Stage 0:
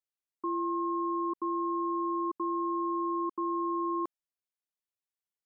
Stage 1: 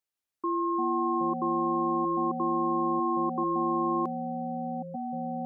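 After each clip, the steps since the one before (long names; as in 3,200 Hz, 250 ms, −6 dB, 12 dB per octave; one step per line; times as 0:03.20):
delay with pitch and tempo change per echo 165 ms, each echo −6 semitones, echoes 2, each echo −6 dB
level +3 dB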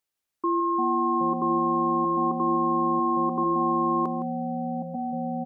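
slap from a distant wall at 28 metres, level −12 dB
level +4.5 dB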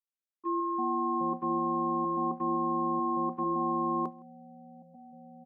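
noise gate −25 dBFS, range −15 dB
level −6 dB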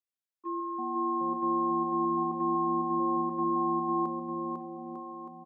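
high-pass filter 150 Hz
on a send: bouncing-ball delay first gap 500 ms, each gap 0.8×, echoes 5
on the sum: level −3.5 dB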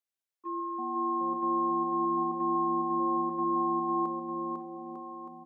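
high-pass filter 230 Hz 6 dB per octave
on a send at −11.5 dB: convolution reverb RT60 1.4 s, pre-delay 4 ms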